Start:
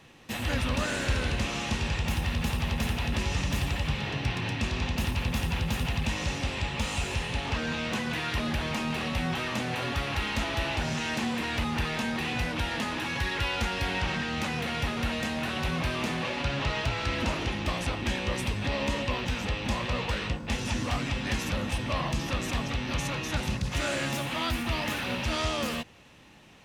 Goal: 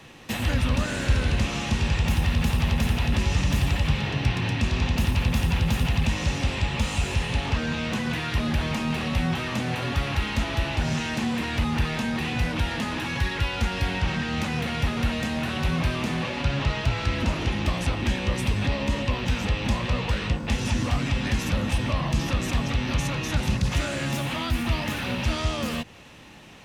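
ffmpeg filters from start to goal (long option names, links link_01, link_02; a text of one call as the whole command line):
ffmpeg -i in.wav -filter_complex "[0:a]acrossover=split=230[link_01][link_02];[link_02]acompressor=threshold=-36dB:ratio=4[link_03];[link_01][link_03]amix=inputs=2:normalize=0,volume=7dB" out.wav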